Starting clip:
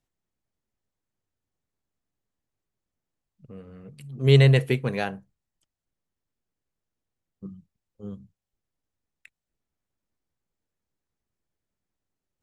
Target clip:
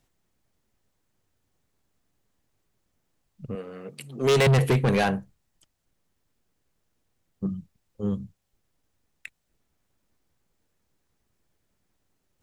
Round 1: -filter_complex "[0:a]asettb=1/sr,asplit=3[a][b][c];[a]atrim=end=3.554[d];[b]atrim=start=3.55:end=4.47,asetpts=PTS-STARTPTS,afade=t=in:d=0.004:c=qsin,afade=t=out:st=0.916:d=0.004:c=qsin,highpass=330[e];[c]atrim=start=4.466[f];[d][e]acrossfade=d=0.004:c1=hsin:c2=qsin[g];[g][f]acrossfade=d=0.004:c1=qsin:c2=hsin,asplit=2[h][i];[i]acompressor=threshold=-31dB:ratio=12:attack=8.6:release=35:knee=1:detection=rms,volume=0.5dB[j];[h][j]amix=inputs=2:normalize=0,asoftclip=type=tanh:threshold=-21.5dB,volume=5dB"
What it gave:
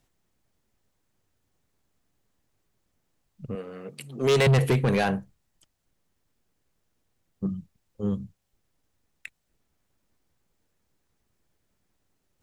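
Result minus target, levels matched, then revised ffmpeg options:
compressor: peak gain reduction +9 dB
-filter_complex "[0:a]asettb=1/sr,asplit=3[a][b][c];[a]atrim=end=3.554[d];[b]atrim=start=3.55:end=4.47,asetpts=PTS-STARTPTS,afade=t=in:d=0.004:c=qsin,afade=t=out:st=0.916:d=0.004:c=qsin,highpass=330[e];[c]atrim=start=4.466[f];[d][e]acrossfade=d=0.004:c1=hsin:c2=qsin[g];[g][f]acrossfade=d=0.004:c1=qsin:c2=hsin,asplit=2[h][i];[i]acompressor=threshold=-21dB:ratio=12:attack=8.6:release=35:knee=1:detection=rms,volume=0.5dB[j];[h][j]amix=inputs=2:normalize=0,asoftclip=type=tanh:threshold=-21.5dB,volume=5dB"

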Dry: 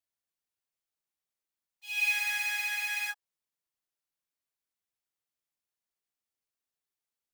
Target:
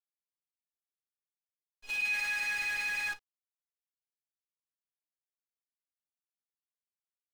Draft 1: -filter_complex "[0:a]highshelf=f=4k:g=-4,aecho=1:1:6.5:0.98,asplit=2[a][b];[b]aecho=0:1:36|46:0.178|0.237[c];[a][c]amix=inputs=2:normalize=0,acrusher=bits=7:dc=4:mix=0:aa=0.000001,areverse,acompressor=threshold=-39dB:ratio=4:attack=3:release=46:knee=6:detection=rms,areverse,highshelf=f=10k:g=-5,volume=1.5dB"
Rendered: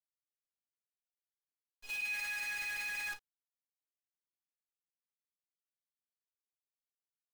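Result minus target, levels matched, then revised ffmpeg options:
compressor: peak gain reduction +7 dB; 8000 Hz band +3.5 dB
-filter_complex "[0:a]highshelf=f=4k:g=-4,aecho=1:1:6.5:0.98,asplit=2[a][b];[b]aecho=0:1:36|46:0.178|0.237[c];[a][c]amix=inputs=2:normalize=0,acrusher=bits=7:dc=4:mix=0:aa=0.000001,areverse,acompressor=threshold=-30dB:ratio=4:attack=3:release=46:knee=6:detection=rms,areverse,highshelf=f=10k:g=-16.5,volume=1.5dB"

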